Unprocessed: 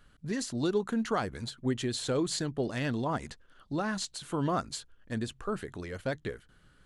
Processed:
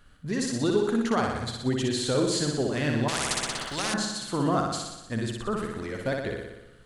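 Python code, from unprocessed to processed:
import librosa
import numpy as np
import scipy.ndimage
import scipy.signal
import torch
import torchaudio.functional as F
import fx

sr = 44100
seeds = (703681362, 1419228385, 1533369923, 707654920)

p1 = x + fx.room_flutter(x, sr, wall_m=10.4, rt60_s=1.0, dry=0)
p2 = fx.spectral_comp(p1, sr, ratio=4.0, at=(3.08, 3.94))
y = p2 * librosa.db_to_amplitude(3.0)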